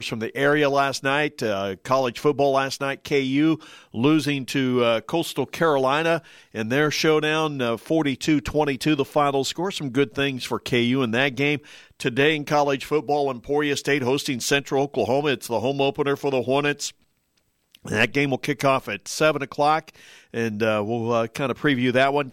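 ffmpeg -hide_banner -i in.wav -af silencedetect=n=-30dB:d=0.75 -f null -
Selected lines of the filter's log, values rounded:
silence_start: 16.89
silence_end: 17.75 | silence_duration: 0.86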